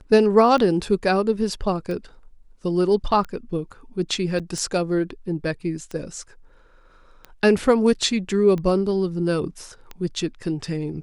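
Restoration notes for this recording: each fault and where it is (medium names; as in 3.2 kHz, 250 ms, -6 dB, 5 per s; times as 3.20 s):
tick 45 rpm -19 dBFS
4.39–4.40 s: dropout 6.8 ms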